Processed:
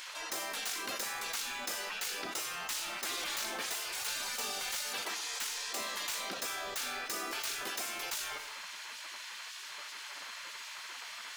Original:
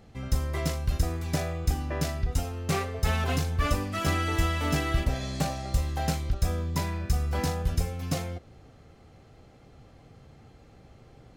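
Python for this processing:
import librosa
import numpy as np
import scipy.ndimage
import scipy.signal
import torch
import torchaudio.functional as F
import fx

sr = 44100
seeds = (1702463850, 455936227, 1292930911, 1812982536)

y = fx.tracing_dist(x, sr, depth_ms=0.06)
y = fx.spec_gate(y, sr, threshold_db=-25, keep='weak')
y = fx.low_shelf(y, sr, hz=230.0, db=-11.0)
y = np.clip(y, -10.0 ** (-33.0 / 20.0), 10.0 ** (-33.0 / 20.0))
y = fx.rev_schroeder(y, sr, rt60_s=0.64, comb_ms=28, drr_db=14.5)
y = fx.env_flatten(y, sr, amount_pct=70)
y = F.gain(torch.from_numpy(y), 1.5).numpy()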